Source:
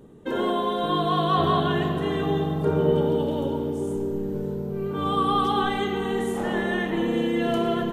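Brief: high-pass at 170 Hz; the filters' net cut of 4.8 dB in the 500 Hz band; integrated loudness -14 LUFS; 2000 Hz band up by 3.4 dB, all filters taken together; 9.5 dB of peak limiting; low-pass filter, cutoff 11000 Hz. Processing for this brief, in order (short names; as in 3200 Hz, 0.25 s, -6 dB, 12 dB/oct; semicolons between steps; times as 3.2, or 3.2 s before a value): HPF 170 Hz; LPF 11000 Hz; bell 500 Hz -6.5 dB; bell 2000 Hz +4.5 dB; gain +16 dB; limiter -5 dBFS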